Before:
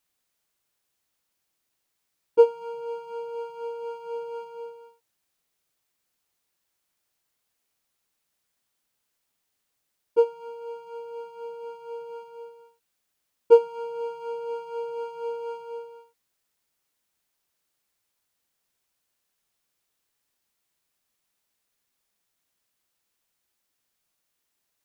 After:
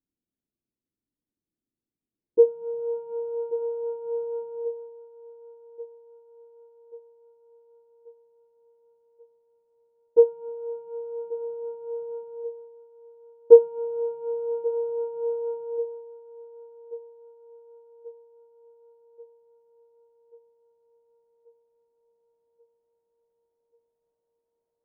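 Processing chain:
feedback echo with a high-pass in the loop 1,135 ms, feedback 63%, high-pass 240 Hz, level −17.5 dB
low-pass filter sweep 280 Hz → 560 Hz, 0:02.02–0:02.97
level −2.5 dB

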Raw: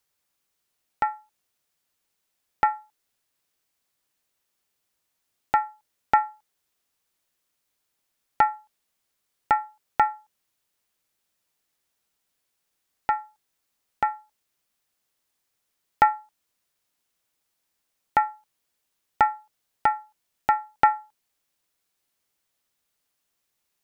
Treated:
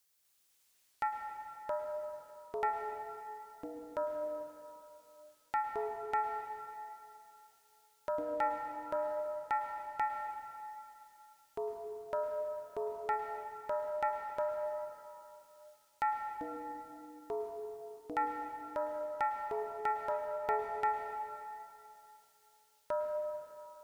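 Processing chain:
high-shelf EQ 3,200 Hz +10 dB
reversed playback
downward compressor 6 to 1, threshold −25 dBFS, peak gain reduction 13.5 dB
reversed playback
delay with pitch and tempo change per echo 248 ms, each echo −6 semitones, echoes 3
mains-hum notches 60/120/180/240/300 Hz
convolution reverb RT60 2.9 s, pre-delay 98 ms, DRR 4 dB
level −6 dB

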